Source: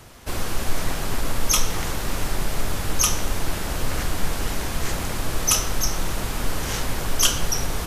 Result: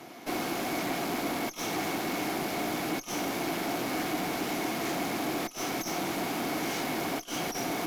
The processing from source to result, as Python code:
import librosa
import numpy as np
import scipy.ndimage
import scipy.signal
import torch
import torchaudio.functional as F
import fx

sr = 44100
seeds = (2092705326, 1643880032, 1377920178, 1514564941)

y = scipy.signal.sosfilt(scipy.signal.butter(4, 160.0, 'highpass', fs=sr, output='sos'), x)
y = fx.peak_eq(y, sr, hz=8500.0, db=-11.0, octaves=0.39)
y = fx.over_compress(y, sr, threshold_db=-29.0, ratio=-0.5)
y = fx.tube_stage(y, sr, drive_db=32.0, bias=0.65)
y = fx.small_body(y, sr, hz=(310.0, 710.0, 2200.0), ring_ms=30, db=11)